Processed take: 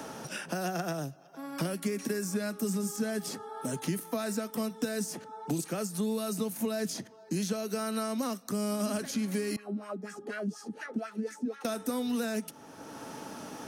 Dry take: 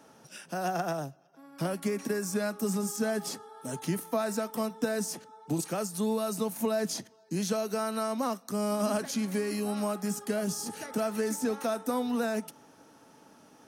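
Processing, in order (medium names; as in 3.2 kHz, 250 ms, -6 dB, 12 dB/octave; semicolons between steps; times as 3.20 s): dynamic bell 860 Hz, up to -8 dB, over -46 dBFS, Q 1.2; 9.56–11.65 s: wah-wah 4.1 Hz 210–1800 Hz, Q 3.2; three bands compressed up and down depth 70%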